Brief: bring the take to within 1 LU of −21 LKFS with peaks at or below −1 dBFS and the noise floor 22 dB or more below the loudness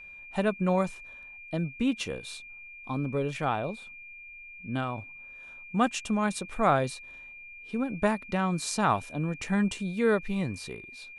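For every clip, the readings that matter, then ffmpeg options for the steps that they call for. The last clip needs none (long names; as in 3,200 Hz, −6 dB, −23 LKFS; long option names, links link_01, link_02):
interfering tone 2,400 Hz; level of the tone −44 dBFS; integrated loudness −29.5 LKFS; sample peak −11.0 dBFS; target loudness −21.0 LKFS
→ -af "bandreject=frequency=2400:width=30"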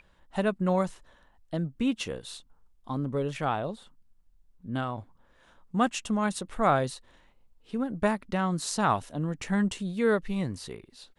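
interfering tone none found; integrated loudness −29.5 LKFS; sample peak −11.0 dBFS; target loudness −21.0 LKFS
→ -af "volume=8.5dB"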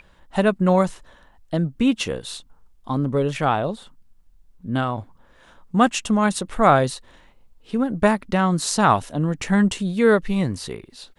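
integrated loudness −21.0 LKFS; sample peak −2.5 dBFS; background noise floor −54 dBFS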